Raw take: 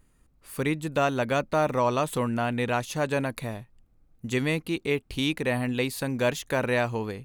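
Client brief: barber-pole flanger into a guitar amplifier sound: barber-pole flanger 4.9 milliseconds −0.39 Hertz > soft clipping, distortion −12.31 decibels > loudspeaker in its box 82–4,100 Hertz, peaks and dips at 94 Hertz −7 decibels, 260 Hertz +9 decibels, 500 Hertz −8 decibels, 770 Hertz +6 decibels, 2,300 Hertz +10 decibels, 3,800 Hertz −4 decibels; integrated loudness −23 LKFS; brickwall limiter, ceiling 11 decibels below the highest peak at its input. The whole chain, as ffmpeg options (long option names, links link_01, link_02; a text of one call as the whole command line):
ffmpeg -i in.wav -filter_complex "[0:a]alimiter=limit=-23dB:level=0:latency=1,asplit=2[link_01][link_02];[link_02]adelay=4.9,afreqshift=-0.39[link_03];[link_01][link_03]amix=inputs=2:normalize=1,asoftclip=threshold=-32.5dB,highpass=82,equalizer=frequency=94:width_type=q:width=4:gain=-7,equalizer=frequency=260:width_type=q:width=4:gain=9,equalizer=frequency=500:width_type=q:width=4:gain=-8,equalizer=frequency=770:width_type=q:width=4:gain=6,equalizer=frequency=2300:width_type=q:width=4:gain=10,equalizer=frequency=3800:width_type=q:width=4:gain=-4,lowpass=frequency=4100:width=0.5412,lowpass=frequency=4100:width=1.3066,volume=14dB" out.wav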